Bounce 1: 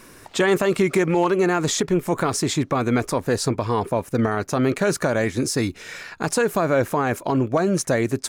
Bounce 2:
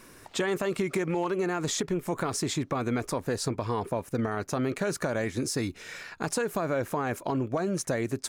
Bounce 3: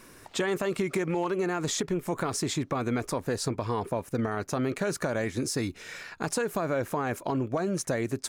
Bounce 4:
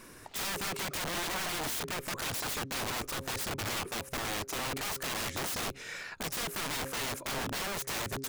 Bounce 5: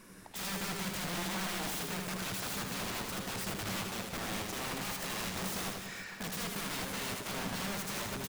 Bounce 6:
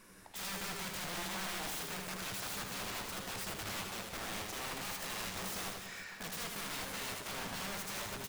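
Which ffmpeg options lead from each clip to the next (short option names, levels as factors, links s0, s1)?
-af "acompressor=threshold=0.1:ratio=3,volume=0.531"
-af anull
-af "bandreject=f=134.2:t=h:w=4,bandreject=f=268.4:t=h:w=4,bandreject=f=402.6:t=h:w=4,bandreject=f=536.8:t=h:w=4,aeval=exprs='(mod(31.6*val(0)+1,2)-1)/31.6':c=same"
-filter_complex "[0:a]equalizer=f=190:w=6.5:g=14.5,asplit=2[s0][s1];[s1]aecho=0:1:80|184|319.2|495|723.4:0.631|0.398|0.251|0.158|0.1[s2];[s0][s2]amix=inputs=2:normalize=0,volume=0.562"
-af "equalizer=f=190:t=o:w=2.1:g=-5.5,flanger=delay=9.7:depth=4.6:regen=-70:speed=0.36:shape=sinusoidal,volume=1.26"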